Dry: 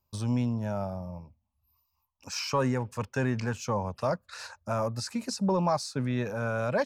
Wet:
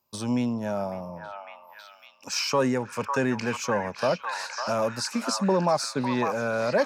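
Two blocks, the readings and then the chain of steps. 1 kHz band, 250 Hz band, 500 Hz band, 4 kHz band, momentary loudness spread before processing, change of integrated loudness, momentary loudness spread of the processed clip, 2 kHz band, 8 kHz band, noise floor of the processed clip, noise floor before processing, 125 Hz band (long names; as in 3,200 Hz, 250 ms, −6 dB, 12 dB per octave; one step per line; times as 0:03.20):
+4.5 dB, +3.0 dB, +5.0 dB, +6.5 dB, 9 LU, +3.5 dB, 14 LU, +6.0 dB, +6.0 dB, −52 dBFS, −78 dBFS, −3.5 dB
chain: high-pass filter 220 Hz 12 dB per octave
dynamic equaliser 1,100 Hz, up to −4 dB, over −39 dBFS, Q 1.1
on a send: echo through a band-pass that steps 552 ms, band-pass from 1,200 Hz, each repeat 0.7 octaves, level −1 dB
on the sum: level +6 dB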